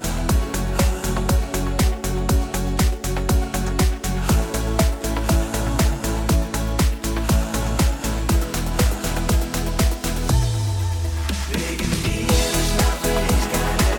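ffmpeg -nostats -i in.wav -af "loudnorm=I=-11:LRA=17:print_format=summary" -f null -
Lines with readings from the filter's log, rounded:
Input Integrated:    -21.4 LUFS
Input True Peak:      -5.9 dBTP
Input LRA:             1.1 LU
Input Threshold:     -31.4 LUFS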